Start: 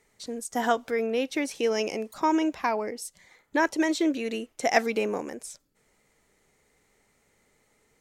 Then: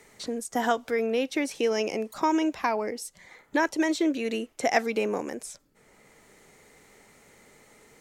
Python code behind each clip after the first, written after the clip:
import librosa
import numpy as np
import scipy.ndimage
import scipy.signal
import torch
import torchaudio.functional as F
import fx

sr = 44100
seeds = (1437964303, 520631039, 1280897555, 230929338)

y = fx.band_squash(x, sr, depth_pct=40)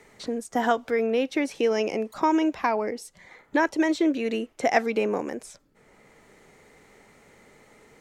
y = fx.high_shelf(x, sr, hz=4700.0, db=-9.5)
y = F.gain(torch.from_numpy(y), 2.5).numpy()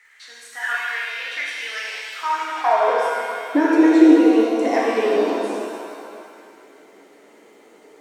y = fx.filter_sweep_highpass(x, sr, from_hz=1700.0, to_hz=320.0, start_s=2.14, end_s=3.15, q=3.8)
y = fx.dmg_crackle(y, sr, seeds[0], per_s=41.0, level_db=-49.0)
y = fx.rev_shimmer(y, sr, seeds[1], rt60_s=2.3, semitones=7, shimmer_db=-8, drr_db=-5.5)
y = F.gain(torch.from_numpy(y), -5.5).numpy()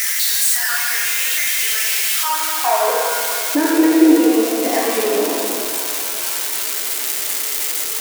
y = x + 0.5 * 10.0 ** (-9.5 / 20.0) * np.diff(np.sign(x), prepend=np.sign(x[:1]))